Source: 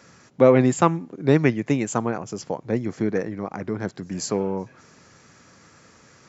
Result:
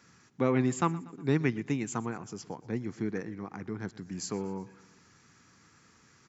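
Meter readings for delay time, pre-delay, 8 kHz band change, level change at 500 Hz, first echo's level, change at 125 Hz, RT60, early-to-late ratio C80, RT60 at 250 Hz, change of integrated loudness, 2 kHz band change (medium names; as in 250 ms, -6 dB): 120 ms, no reverb, no reading, -13.5 dB, -20.0 dB, -8.0 dB, no reverb, no reverb, no reverb, -10.0 dB, -8.0 dB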